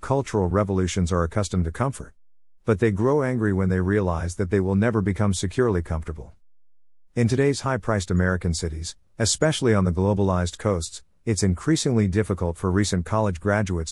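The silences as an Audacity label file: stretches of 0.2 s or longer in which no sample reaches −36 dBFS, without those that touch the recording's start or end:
2.080000	2.680000	silence
6.280000	7.170000	silence
8.920000	9.190000	silence
10.980000	11.270000	silence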